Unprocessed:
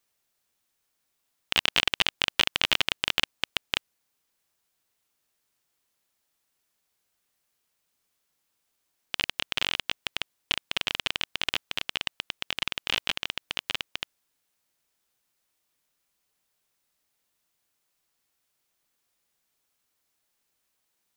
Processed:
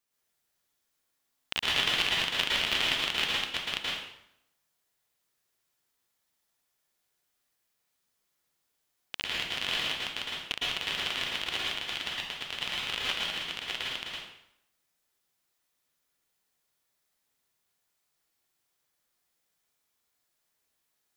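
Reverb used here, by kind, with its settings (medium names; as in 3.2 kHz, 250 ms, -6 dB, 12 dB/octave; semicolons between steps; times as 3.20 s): plate-style reverb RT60 0.78 s, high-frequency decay 0.85×, pre-delay 100 ms, DRR -5.5 dB; trim -7.5 dB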